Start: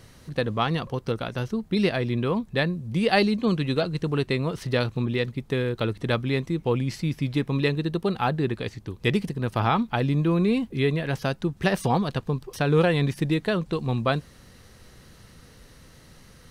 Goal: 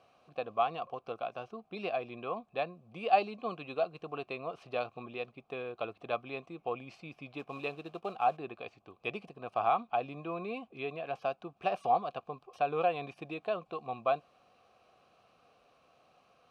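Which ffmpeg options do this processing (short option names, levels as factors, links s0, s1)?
-filter_complex "[0:a]asettb=1/sr,asplit=3[s0][s1][s2];[s0]atrim=end=7.394[s3];[s1]atrim=start=7.39:end=8.37,asetpts=PTS-STARTPTS,afade=t=in:d=0.004:c=qsin,afade=t=out:st=0.976:d=0.004:c=qsin,acrusher=bits=5:mode=log:mix=0:aa=0.000001[s4];[s2]atrim=start=8.366[s5];[s3][s4]acrossfade=d=0.004:c1=hsin:c2=qsin[s6];[s6][s5]acrossfade=d=0.004:c1=qsin:c2=hsin,asplit=3[s7][s8][s9];[s7]bandpass=f=730:t=q:w=8,volume=1[s10];[s8]bandpass=f=1090:t=q:w=8,volume=0.501[s11];[s9]bandpass=f=2440:t=q:w=8,volume=0.355[s12];[s10][s11][s12]amix=inputs=3:normalize=0,volume=1.41"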